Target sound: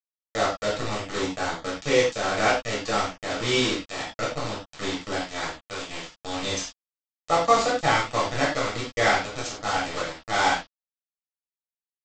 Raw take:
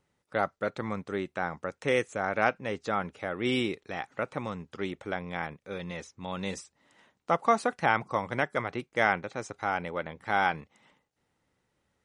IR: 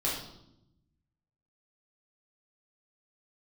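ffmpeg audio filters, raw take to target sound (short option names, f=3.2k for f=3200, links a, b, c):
-filter_complex "[0:a]bass=f=250:g=-1,treble=f=4k:g=14,aresample=16000,acrusher=bits=4:mix=0:aa=0.000001,aresample=44100[a];[1:a]atrim=start_sample=2205,afade=t=out:st=0.16:d=0.01,atrim=end_sample=7497[b];[a][b]afir=irnorm=-1:irlink=0,volume=-3dB"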